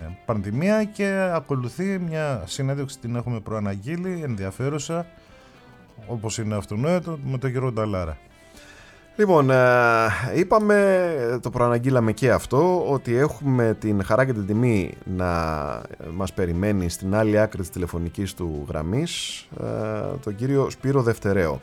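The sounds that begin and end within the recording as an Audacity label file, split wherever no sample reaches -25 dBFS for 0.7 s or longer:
6.100000	8.130000	sound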